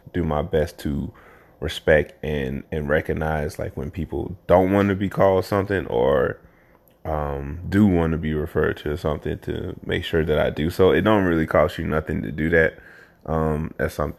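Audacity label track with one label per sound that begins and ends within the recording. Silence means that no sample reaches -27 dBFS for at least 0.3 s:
1.620000	6.320000	sound
7.050000	12.690000	sound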